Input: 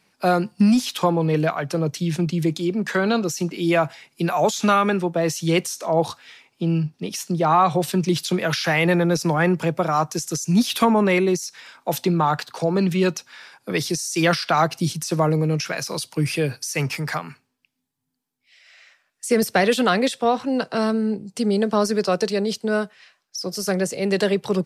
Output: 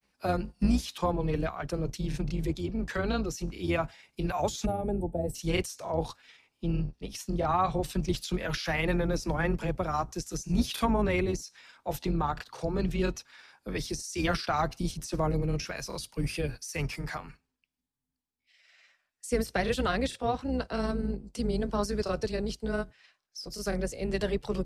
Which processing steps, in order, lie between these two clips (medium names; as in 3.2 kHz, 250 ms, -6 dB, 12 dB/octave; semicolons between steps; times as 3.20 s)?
octave divider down 2 oct, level -2 dB; time-frequency box 4.65–5.36 s, 900–7600 Hz -22 dB; granulator, spray 18 ms, pitch spread up and down by 0 st; trim -9 dB